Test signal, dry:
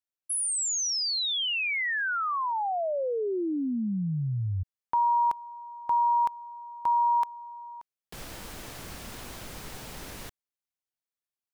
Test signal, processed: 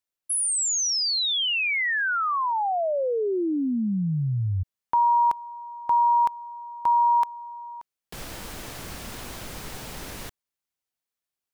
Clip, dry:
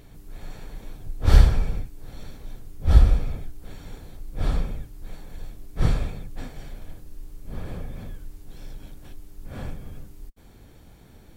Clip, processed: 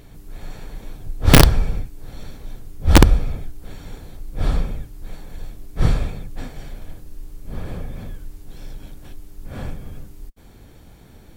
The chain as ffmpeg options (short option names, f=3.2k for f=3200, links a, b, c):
-af "aeval=exprs='(mod(1.88*val(0)+1,2)-1)/1.88':c=same,volume=4dB"